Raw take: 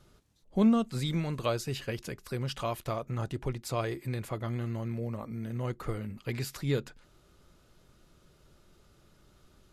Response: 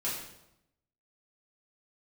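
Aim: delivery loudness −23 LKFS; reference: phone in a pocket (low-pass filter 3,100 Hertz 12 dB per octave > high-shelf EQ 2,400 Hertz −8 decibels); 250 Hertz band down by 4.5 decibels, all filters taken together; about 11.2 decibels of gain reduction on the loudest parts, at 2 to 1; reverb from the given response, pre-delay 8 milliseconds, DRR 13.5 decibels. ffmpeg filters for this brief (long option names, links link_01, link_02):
-filter_complex "[0:a]equalizer=frequency=250:width_type=o:gain=-5.5,acompressor=threshold=-45dB:ratio=2,asplit=2[link_01][link_02];[1:a]atrim=start_sample=2205,adelay=8[link_03];[link_02][link_03]afir=irnorm=-1:irlink=0,volume=-18.5dB[link_04];[link_01][link_04]amix=inputs=2:normalize=0,lowpass=3100,highshelf=frequency=2400:gain=-8,volume=21dB"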